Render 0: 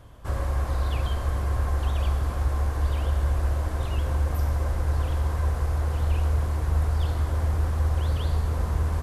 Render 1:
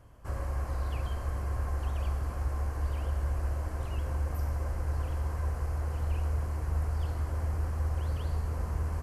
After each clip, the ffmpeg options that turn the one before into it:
ffmpeg -i in.wav -af "equalizer=frequency=3600:width_type=o:width=0.26:gain=-12.5,volume=-7dB" out.wav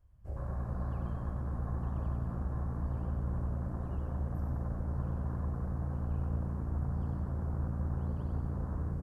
ffmpeg -i in.wav -filter_complex "[0:a]afwtdn=0.01,asplit=2[link_01][link_02];[link_02]asplit=7[link_03][link_04][link_05][link_06][link_07][link_08][link_09];[link_03]adelay=95,afreqshift=57,volume=-5.5dB[link_10];[link_04]adelay=190,afreqshift=114,volume=-10.9dB[link_11];[link_05]adelay=285,afreqshift=171,volume=-16.2dB[link_12];[link_06]adelay=380,afreqshift=228,volume=-21.6dB[link_13];[link_07]adelay=475,afreqshift=285,volume=-26.9dB[link_14];[link_08]adelay=570,afreqshift=342,volume=-32.3dB[link_15];[link_09]adelay=665,afreqshift=399,volume=-37.6dB[link_16];[link_10][link_11][link_12][link_13][link_14][link_15][link_16]amix=inputs=7:normalize=0[link_17];[link_01][link_17]amix=inputs=2:normalize=0,volume=-5dB" out.wav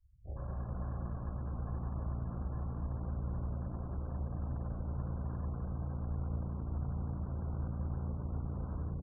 ffmpeg -i in.wav -af "afftfilt=real='re*gte(hypot(re,im),0.00316)':imag='im*gte(hypot(re,im),0.00316)':win_size=1024:overlap=0.75,volume=-3dB" out.wav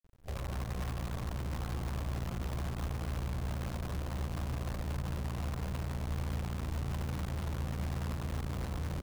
ffmpeg -i in.wav -filter_complex "[0:a]asplit=2[link_01][link_02];[link_02]alimiter=level_in=10.5dB:limit=-24dB:level=0:latency=1:release=48,volume=-10.5dB,volume=0dB[link_03];[link_01][link_03]amix=inputs=2:normalize=0,acrusher=bits=7:dc=4:mix=0:aa=0.000001,volume=-3dB" out.wav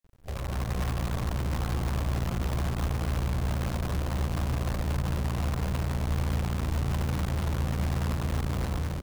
ffmpeg -i in.wav -af "dynaudnorm=framelen=350:gausssize=3:maxgain=4dB,volume=3.5dB" out.wav

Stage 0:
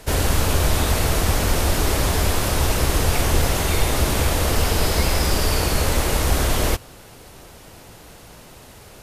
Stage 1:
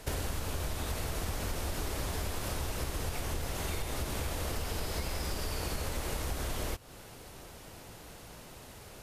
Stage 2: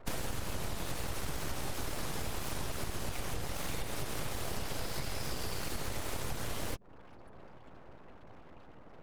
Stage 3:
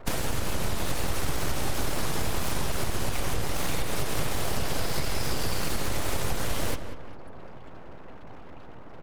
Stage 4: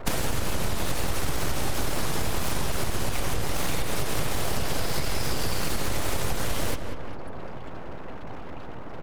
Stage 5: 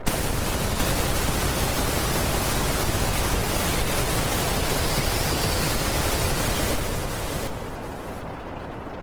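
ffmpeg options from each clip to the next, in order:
ffmpeg -i in.wav -af "acompressor=threshold=-25dB:ratio=10,volume=-6dB" out.wav
ffmpeg -i in.wav -af "afftfilt=real='re*gte(hypot(re,im),0.00447)':imag='im*gte(hypot(re,im),0.00447)':win_size=1024:overlap=0.75,aeval=exprs='abs(val(0))':channel_layout=same" out.wav
ffmpeg -i in.wav -filter_complex "[0:a]asplit=2[link_01][link_02];[link_02]adelay=188,lowpass=frequency=2300:poles=1,volume=-8.5dB,asplit=2[link_03][link_04];[link_04]adelay=188,lowpass=frequency=2300:poles=1,volume=0.45,asplit=2[link_05][link_06];[link_06]adelay=188,lowpass=frequency=2300:poles=1,volume=0.45,asplit=2[link_07][link_08];[link_08]adelay=188,lowpass=frequency=2300:poles=1,volume=0.45,asplit=2[link_09][link_10];[link_10]adelay=188,lowpass=frequency=2300:poles=1,volume=0.45[link_11];[link_01][link_03][link_05][link_07][link_09][link_11]amix=inputs=6:normalize=0,volume=8dB" out.wav
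ffmpeg -i in.wav -af "acompressor=threshold=-31dB:ratio=2,volume=7dB" out.wav
ffmpeg -i in.wav -filter_complex "[0:a]asplit=2[link_01][link_02];[link_02]aecho=0:1:729|1458|2187:0.562|0.112|0.0225[link_03];[link_01][link_03]amix=inputs=2:normalize=0,volume=4.5dB" -ar 48000 -c:a libopus -b:a 20k out.opus

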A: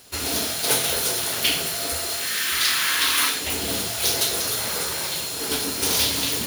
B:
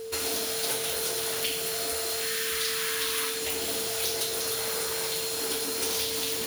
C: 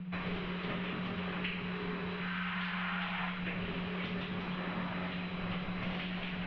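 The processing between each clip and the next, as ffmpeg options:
ffmpeg -i in.wav -filter_complex "[0:a]acrossover=split=280|5300[link_01][link_02][link_03];[link_01]acompressor=threshold=-50dB:ratio=4[link_04];[link_02]acompressor=threshold=-33dB:ratio=4[link_05];[link_03]acompressor=threshold=-31dB:ratio=4[link_06];[link_04][link_05][link_06]amix=inputs=3:normalize=0,aeval=exprs='val(0)+0.0178*sin(2*PI*450*n/s)':channel_layout=same" out.wav
ffmpeg -i in.wav -af "flanger=delay=7.2:depth=9.3:regen=-67:speed=0.64:shape=triangular,highpass=frequency=240:width_type=q:width=0.5412,highpass=frequency=240:width_type=q:width=1.307,lowpass=frequency=3000:width_type=q:width=0.5176,lowpass=frequency=3000:width_type=q:width=0.7071,lowpass=frequency=3000:width_type=q:width=1.932,afreqshift=-270,volume=1.5dB" out.wav

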